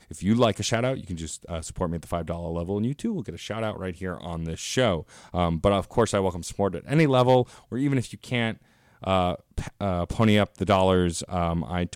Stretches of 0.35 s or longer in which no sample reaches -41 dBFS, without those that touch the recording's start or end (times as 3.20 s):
8.54–9.02 s